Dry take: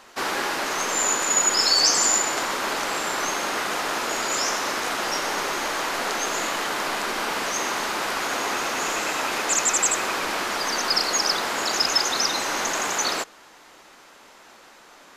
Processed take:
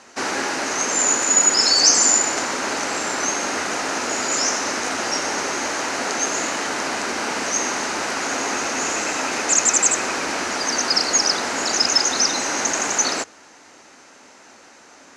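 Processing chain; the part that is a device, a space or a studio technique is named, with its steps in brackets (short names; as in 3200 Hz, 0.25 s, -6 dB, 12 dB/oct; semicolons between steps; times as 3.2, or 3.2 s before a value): car door speaker (speaker cabinet 81–9400 Hz, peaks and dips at 84 Hz +9 dB, 260 Hz +6 dB, 1100 Hz -4 dB, 3400 Hz -6 dB, 6200 Hz +6 dB); gain +2.5 dB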